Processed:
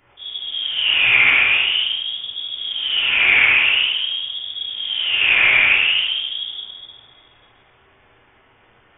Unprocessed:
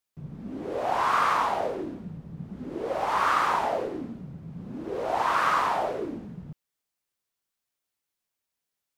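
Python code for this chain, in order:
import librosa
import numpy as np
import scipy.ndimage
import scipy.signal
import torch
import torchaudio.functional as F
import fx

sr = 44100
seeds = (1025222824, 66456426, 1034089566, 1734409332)

y = fx.dmg_noise_colour(x, sr, seeds[0], colour='blue', level_db=-48.0)
y = y + 10.0 ** (-8.0 / 20.0) * np.pad(y, (int(73 * sr / 1000.0), 0))[:len(y)]
y = fx.room_shoebox(y, sr, seeds[1], volume_m3=370.0, walls='mixed', distance_m=3.2)
y = fx.freq_invert(y, sr, carrier_hz=3500)
y = fx.attack_slew(y, sr, db_per_s=370.0)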